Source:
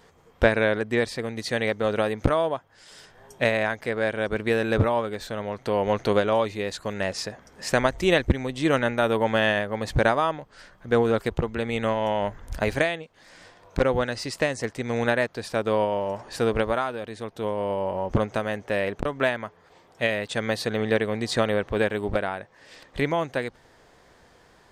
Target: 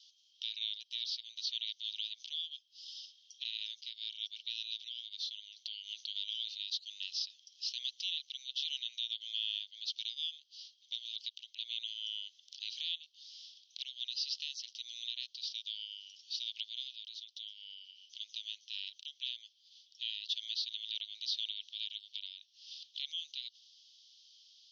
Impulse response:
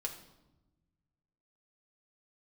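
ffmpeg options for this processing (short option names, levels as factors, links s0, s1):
-filter_complex "[0:a]asuperpass=centerf=4300:order=12:qfactor=1.4,acrossover=split=4500[s0][s1];[s1]acompressor=threshold=0.001:ratio=4:attack=1:release=60[s2];[s0][s2]amix=inputs=2:normalize=0,alimiter=level_in=2.24:limit=0.0631:level=0:latency=1:release=78,volume=0.447,volume=2"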